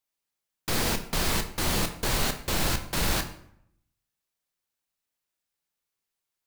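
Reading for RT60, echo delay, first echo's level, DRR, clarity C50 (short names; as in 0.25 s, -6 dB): 0.70 s, none, none, 7.0 dB, 11.0 dB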